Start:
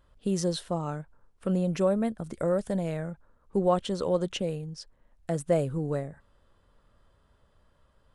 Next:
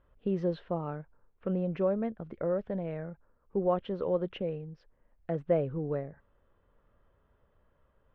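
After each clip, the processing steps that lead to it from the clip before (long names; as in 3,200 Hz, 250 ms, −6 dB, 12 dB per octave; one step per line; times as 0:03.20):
low-pass filter 2,700 Hz 24 dB per octave
parametric band 440 Hz +4 dB 0.83 octaves
speech leveller 2 s
level −6.5 dB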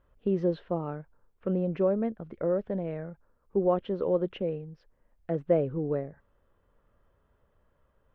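dynamic equaliser 330 Hz, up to +5 dB, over −39 dBFS, Q 0.94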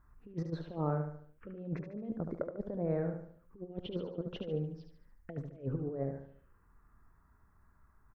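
compressor whose output falls as the input rises −34 dBFS, ratio −0.5
phaser swept by the level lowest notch 480 Hz, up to 3,000 Hz, full sweep at −32.5 dBFS
repeating echo 73 ms, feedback 43%, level −6.5 dB
level −3 dB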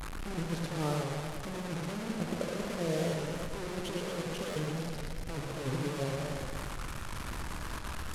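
linear delta modulator 64 kbit/s, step −33.5 dBFS
buffer that repeats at 0:03.06/0:04.49, samples 512, times 5
feedback echo with a swinging delay time 114 ms, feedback 67%, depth 149 cents, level −5 dB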